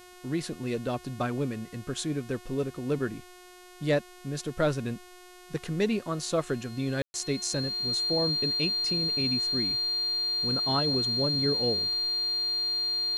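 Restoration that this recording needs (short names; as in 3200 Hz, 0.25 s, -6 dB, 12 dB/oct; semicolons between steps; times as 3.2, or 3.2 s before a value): de-hum 361.1 Hz, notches 36; notch 4200 Hz, Q 30; room tone fill 7.02–7.14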